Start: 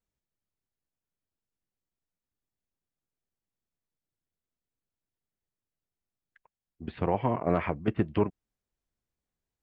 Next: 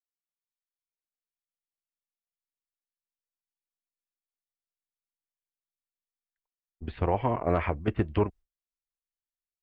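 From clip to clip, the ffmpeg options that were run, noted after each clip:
-af "agate=range=-33dB:threshold=-41dB:ratio=3:detection=peak,asubboost=boost=9:cutoff=52,volume=1.5dB"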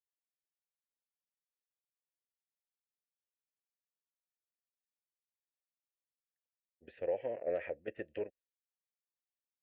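-filter_complex "[0:a]asplit=3[a][b][c];[a]bandpass=f=530:t=q:w=8,volume=0dB[d];[b]bandpass=f=1.84k:t=q:w=8,volume=-6dB[e];[c]bandpass=f=2.48k:t=q:w=8,volume=-9dB[f];[d][e][f]amix=inputs=3:normalize=0"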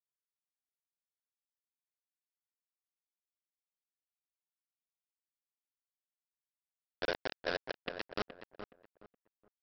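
-filter_complex "[0:a]alimiter=level_in=9.5dB:limit=-24dB:level=0:latency=1:release=336,volume=-9.5dB,aresample=11025,acrusher=bits=5:mix=0:aa=0.000001,aresample=44100,asplit=2[a][b];[b]adelay=420,lowpass=f=1.6k:p=1,volume=-9dB,asplit=2[c][d];[d]adelay=420,lowpass=f=1.6k:p=1,volume=0.28,asplit=2[e][f];[f]adelay=420,lowpass=f=1.6k:p=1,volume=0.28[g];[a][c][e][g]amix=inputs=4:normalize=0,volume=5.5dB"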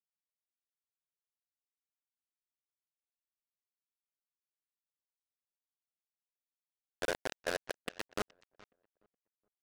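-af "aeval=exprs='0.0841*(cos(1*acos(clip(val(0)/0.0841,-1,1)))-cos(1*PI/2))+0.00237*(cos(3*acos(clip(val(0)/0.0841,-1,1)))-cos(3*PI/2))+0.0133*(cos(7*acos(clip(val(0)/0.0841,-1,1)))-cos(7*PI/2))':c=same"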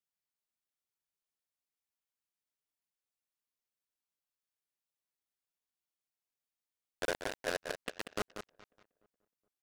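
-af "aecho=1:1:188:0.376"

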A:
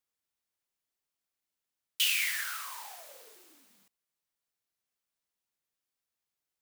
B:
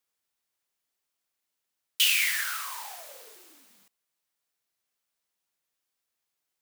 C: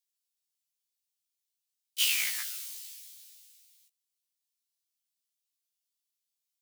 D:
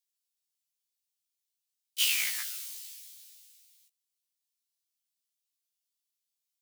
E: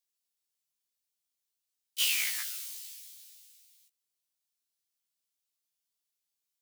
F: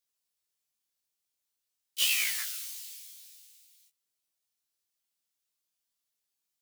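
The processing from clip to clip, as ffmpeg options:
-af "lowshelf=f=230:g=-6,volume=5dB"
-filter_complex "[0:a]acrossover=split=2700[a][b];[a]acrusher=bits=3:mix=0:aa=0.5[c];[c][b]amix=inputs=2:normalize=0,afftfilt=real='re*1.73*eq(mod(b,3),0)':imag='im*1.73*eq(mod(b,3),0)':win_size=2048:overlap=0.75"
-af anull
-af "asoftclip=type=tanh:threshold=-18dB"
-af "flanger=delay=17:depth=7.8:speed=0.47,volume=4.5dB"

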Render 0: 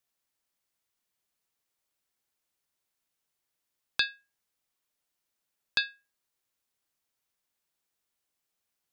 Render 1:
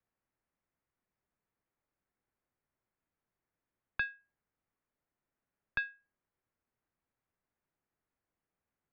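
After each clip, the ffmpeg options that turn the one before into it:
-filter_complex "[0:a]lowpass=f=2.1k:w=0.5412,lowpass=f=2.1k:w=1.3066,lowshelf=f=380:g=8.5,acrossover=split=170|930[a][b][c];[b]acompressor=threshold=-55dB:ratio=6[d];[a][d][c]amix=inputs=3:normalize=0,volume=-1.5dB"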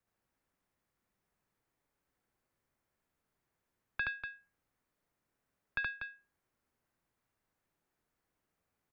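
-filter_complex "[0:a]alimiter=level_in=2dB:limit=-24dB:level=0:latency=1:release=114,volume=-2dB,asplit=2[a][b];[b]aecho=0:1:72.89|242:1|0.447[c];[a][c]amix=inputs=2:normalize=0,volume=2dB"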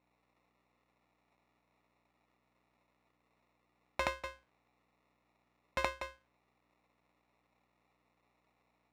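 -af "acrusher=samples=28:mix=1:aa=0.000001,aeval=exprs='val(0)+0.0002*(sin(2*PI*60*n/s)+sin(2*PI*2*60*n/s)/2+sin(2*PI*3*60*n/s)/3+sin(2*PI*4*60*n/s)/4+sin(2*PI*5*60*n/s)/5)':c=same,bandpass=f=1.7k:t=q:w=0.86:csg=0,volume=15dB"

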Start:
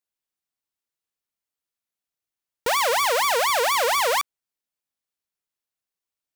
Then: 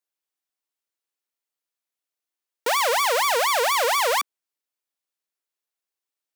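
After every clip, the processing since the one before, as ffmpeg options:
-af "highpass=f=270:w=0.5412,highpass=f=270:w=1.3066"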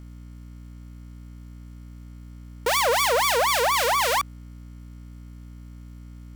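-filter_complex "[0:a]acrossover=split=1500[a][b];[a]aeval=exprs='val(0)*(1-0.5/2+0.5/2*cos(2*PI*3.8*n/s))':c=same[c];[b]aeval=exprs='val(0)*(1-0.5/2-0.5/2*cos(2*PI*3.8*n/s))':c=same[d];[c][d]amix=inputs=2:normalize=0,aeval=exprs='val(0)+0.00794*(sin(2*PI*60*n/s)+sin(2*PI*2*60*n/s)/2+sin(2*PI*3*60*n/s)/3+sin(2*PI*4*60*n/s)/4+sin(2*PI*5*60*n/s)/5)':c=same,acrusher=bits=9:mix=0:aa=0.000001,volume=2dB"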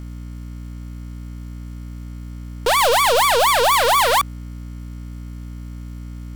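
-af "aeval=exprs='0.299*sin(PI/2*2.24*val(0)/0.299)':c=same,volume=-1.5dB"

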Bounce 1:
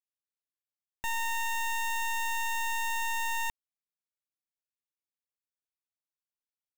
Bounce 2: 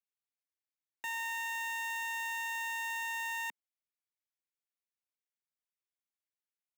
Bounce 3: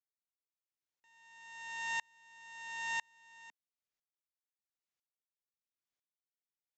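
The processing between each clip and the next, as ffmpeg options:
-af "highpass=f=220:w=0.5412,highpass=f=220:w=1.3066,equalizer=f=2.1k:w=1.8:g=7,volume=-7.5dB"
-af "aresample=16000,acrusher=bits=3:mode=log:mix=0:aa=0.000001,aresample=44100,aeval=exprs='val(0)*pow(10,-37*if(lt(mod(-1*n/s,1),2*abs(-1)/1000),1-mod(-1*n/s,1)/(2*abs(-1)/1000),(mod(-1*n/s,1)-2*abs(-1)/1000)/(1-2*abs(-1)/1000))/20)':c=same,volume=3.5dB"

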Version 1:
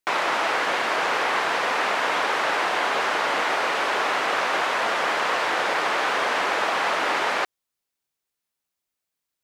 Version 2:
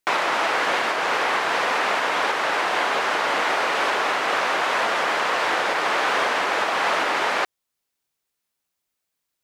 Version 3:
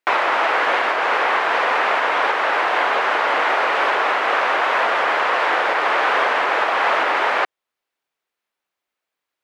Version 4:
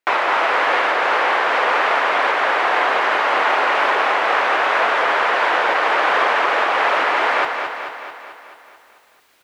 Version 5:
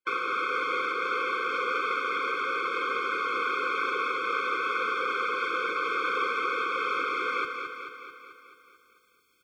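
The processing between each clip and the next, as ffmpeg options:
-af "alimiter=limit=-15dB:level=0:latency=1:release=419,volume=3.5dB"
-af "bass=f=250:g=-14,treble=f=4k:g=-14,volume=4.5dB"
-af "areverse,acompressor=mode=upward:threshold=-38dB:ratio=2.5,areverse,aecho=1:1:219|438|657|876|1095|1314|1533|1752:0.473|0.284|0.17|0.102|0.0613|0.0368|0.0221|0.0132"
-af "afftfilt=real='re*eq(mod(floor(b*sr/1024/520),2),0)':imag='im*eq(mod(floor(b*sr/1024/520),2),0)':win_size=1024:overlap=0.75,volume=-8dB"

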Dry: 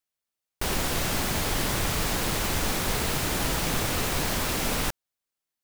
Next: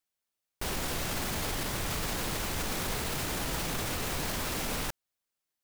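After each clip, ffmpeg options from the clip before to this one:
-af "alimiter=limit=-24dB:level=0:latency=1:release=29"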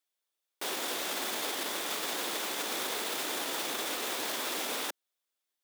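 -af "highpass=f=290:w=0.5412,highpass=f=290:w=1.3066,equalizer=f=3.5k:w=7:g=6.5"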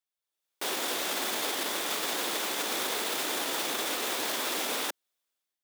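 -af "dynaudnorm=f=110:g=7:m=9.5dB,volume=-6.5dB"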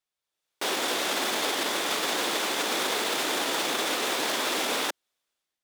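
-af "highshelf=f=11k:g=-11.5,volume=5dB"

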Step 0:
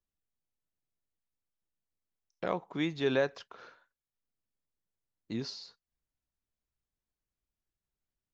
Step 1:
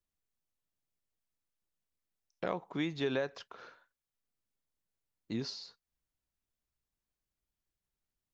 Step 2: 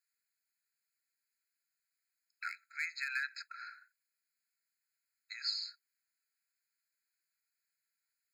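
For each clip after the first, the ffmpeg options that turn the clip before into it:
-af "acompressor=threshold=-29dB:ratio=6"
-af "volume=26dB,asoftclip=hard,volume=-26dB,afftfilt=real='re*eq(mod(floor(b*sr/1024/1300),2),1)':imag='im*eq(mod(floor(b*sr/1024/1300),2),1)':win_size=1024:overlap=0.75,volume=7.5dB"

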